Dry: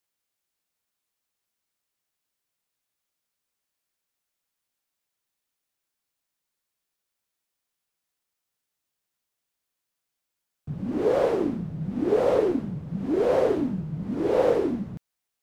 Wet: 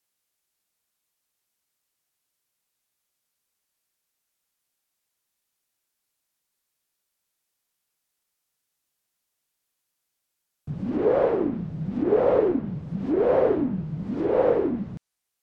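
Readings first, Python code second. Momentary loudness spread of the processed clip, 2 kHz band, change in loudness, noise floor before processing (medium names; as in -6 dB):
12 LU, -0.5 dB, +1.0 dB, -84 dBFS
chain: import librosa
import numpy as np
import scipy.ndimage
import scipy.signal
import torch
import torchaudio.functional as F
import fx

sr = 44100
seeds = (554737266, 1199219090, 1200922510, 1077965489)

y = fx.high_shelf(x, sr, hz=5700.0, db=5.0)
y = fx.rider(y, sr, range_db=10, speed_s=2.0)
y = fx.env_lowpass_down(y, sr, base_hz=2000.0, full_db=-20.5)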